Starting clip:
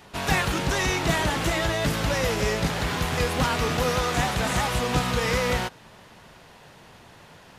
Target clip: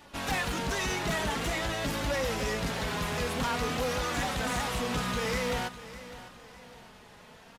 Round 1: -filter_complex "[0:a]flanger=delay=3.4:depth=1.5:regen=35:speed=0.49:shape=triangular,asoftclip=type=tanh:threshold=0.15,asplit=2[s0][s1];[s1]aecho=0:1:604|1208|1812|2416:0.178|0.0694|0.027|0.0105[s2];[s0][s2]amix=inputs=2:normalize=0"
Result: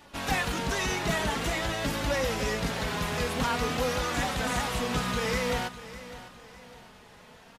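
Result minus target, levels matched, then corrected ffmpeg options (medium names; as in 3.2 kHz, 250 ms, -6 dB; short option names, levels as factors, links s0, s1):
saturation: distortion -11 dB
-filter_complex "[0:a]flanger=delay=3.4:depth=1.5:regen=35:speed=0.49:shape=triangular,asoftclip=type=tanh:threshold=0.0596,asplit=2[s0][s1];[s1]aecho=0:1:604|1208|1812|2416:0.178|0.0694|0.027|0.0105[s2];[s0][s2]amix=inputs=2:normalize=0"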